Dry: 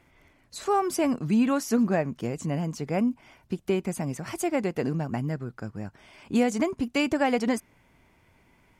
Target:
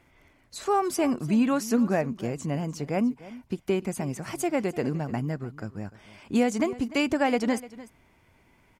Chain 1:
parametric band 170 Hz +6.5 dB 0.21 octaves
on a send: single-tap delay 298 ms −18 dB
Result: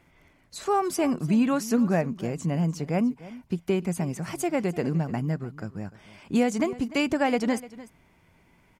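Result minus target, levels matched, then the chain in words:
125 Hz band +3.0 dB
parametric band 170 Hz −2.5 dB 0.21 octaves
on a send: single-tap delay 298 ms −18 dB

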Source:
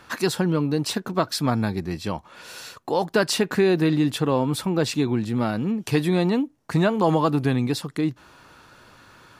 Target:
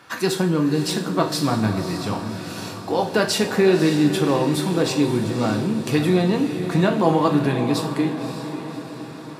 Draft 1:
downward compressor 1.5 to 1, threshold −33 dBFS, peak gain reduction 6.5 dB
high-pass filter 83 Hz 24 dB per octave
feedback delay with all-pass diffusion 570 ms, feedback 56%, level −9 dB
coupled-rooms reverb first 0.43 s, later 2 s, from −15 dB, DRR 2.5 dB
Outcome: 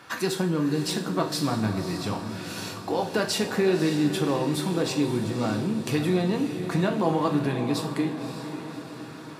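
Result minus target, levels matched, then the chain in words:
downward compressor: peak gain reduction +6.5 dB
high-pass filter 83 Hz 24 dB per octave
feedback delay with all-pass diffusion 570 ms, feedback 56%, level −9 dB
coupled-rooms reverb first 0.43 s, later 2 s, from −15 dB, DRR 2.5 dB

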